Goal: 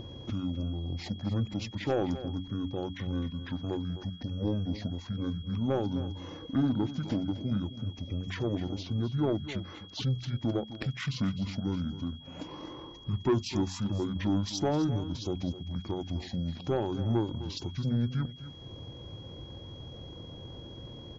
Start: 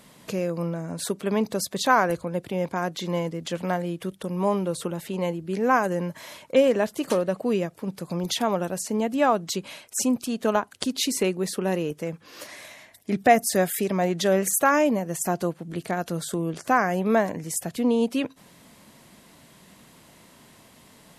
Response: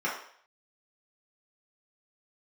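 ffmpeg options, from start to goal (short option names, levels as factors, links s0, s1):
-filter_complex "[0:a]tiltshelf=f=1500:g=4,bandreject=f=60:t=h:w=6,bandreject=f=120:t=h:w=6,bandreject=f=180:t=h:w=6,bandreject=f=240:t=h:w=6,bandreject=f=300:t=h:w=6,bandreject=f=360:t=h:w=6,bandreject=f=420:t=h:w=6,bandreject=f=480:t=h:w=6,bandreject=f=540:t=h:w=6,acrossover=split=1600[s0][s1];[s0]acompressor=mode=upward:threshold=0.0794:ratio=2.5[s2];[s2][s1]amix=inputs=2:normalize=0,asetrate=22696,aresample=44100,atempo=1.94306,asoftclip=type=tanh:threshold=0.251,asplit=2[s3][s4];[s4]aecho=0:1:257:0.211[s5];[s3][s5]amix=inputs=2:normalize=0,aeval=exprs='val(0)+0.00794*sin(2*PI*3300*n/s)':c=same,volume=0.398"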